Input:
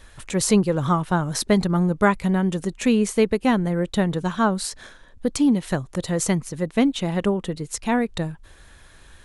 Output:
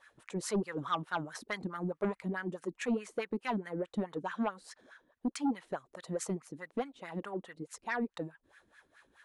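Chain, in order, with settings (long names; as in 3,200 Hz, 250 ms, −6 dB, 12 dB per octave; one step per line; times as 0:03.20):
LFO wah 4.7 Hz 250–1,800 Hz, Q 3.1
sine wavefolder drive 5 dB, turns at −12 dBFS
first-order pre-emphasis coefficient 0.8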